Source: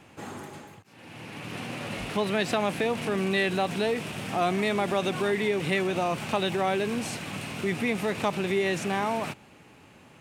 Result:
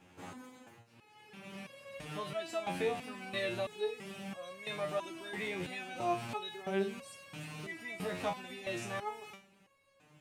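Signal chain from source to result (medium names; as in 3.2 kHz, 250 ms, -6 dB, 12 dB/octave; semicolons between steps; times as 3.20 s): resonator arpeggio 3 Hz 90–550 Hz; trim +1 dB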